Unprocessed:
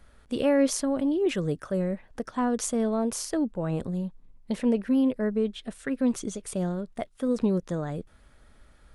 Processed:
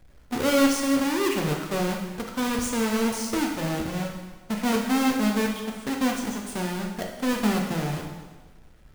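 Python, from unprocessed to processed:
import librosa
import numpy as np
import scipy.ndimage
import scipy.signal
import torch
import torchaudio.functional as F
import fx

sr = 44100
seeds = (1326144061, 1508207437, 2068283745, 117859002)

y = fx.halfwave_hold(x, sr)
y = fx.rev_plate(y, sr, seeds[0], rt60_s=1.3, hf_ratio=0.95, predelay_ms=0, drr_db=0.0)
y = y * 10.0 ** (-5.0 / 20.0)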